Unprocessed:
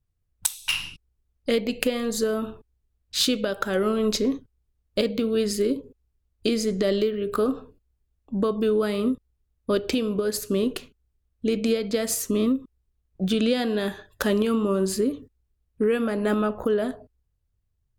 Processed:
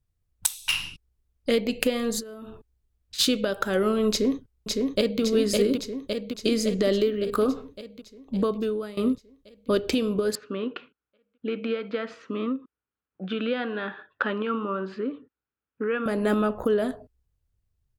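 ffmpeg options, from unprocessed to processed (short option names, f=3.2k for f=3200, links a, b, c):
-filter_complex "[0:a]asplit=3[a][b][c];[a]afade=t=out:st=2.19:d=0.02[d];[b]acompressor=threshold=-36dB:ratio=20:attack=3.2:release=140:knee=1:detection=peak,afade=t=in:st=2.19:d=0.02,afade=t=out:st=3.18:d=0.02[e];[c]afade=t=in:st=3.18:d=0.02[f];[d][e][f]amix=inputs=3:normalize=0,asplit=2[g][h];[h]afade=t=in:st=4.1:d=0.01,afade=t=out:st=5.21:d=0.01,aecho=0:1:560|1120|1680|2240|2800|3360|3920|4480|5040|5600|6160:0.749894|0.487431|0.31683|0.20594|0.133861|0.0870095|0.0565562|0.0367615|0.023895|0.0155317|0.0100956[i];[g][i]amix=inputs=2:normalize=0,asettb=1/sr,asplit=3[j][k][l];[j]atrim=end=10.354[m];[k]atrim=start=10.35:end=16.06,asetpts=PTS-STARTPTS,afade=t=in:d=0.004:c=qsin,afade=t=out:st=5.706:d=0.004:c=qsin,highpass=310,equalizer=f=390:t=q:w=4:g=-7,equalizer=f=640:t=q:w=4:g=-7,equalizer=f=1.4k:t=q:w=4:g=8,equalizer=f=2k:t=q:w=4:g=-3,lowpass=f=2.8k:w=0.5412,lowpass=f=2.8k:w=1.3066[n];[l]atrim=start=16.056[o];[m][n]acrossfade=d=0.004:c1=hsin:c2=qsin[p];[p][o]acrossfade=d=0.004:c1=qsin:c2=hsin,asplit=2[q][r];[q]atrim=end=8.97,asetpts=PTS-STARTPTS,afade=t=out:st=8.38:d=0.59:silence=0.125893[s];[r]atrim=start=8.97,asetpts=PTS-STARTPTS,afade=t=in:d=0.004:c=hsin:silence=0.125893[t];[s][t]concat=n=2:v=0:a=1"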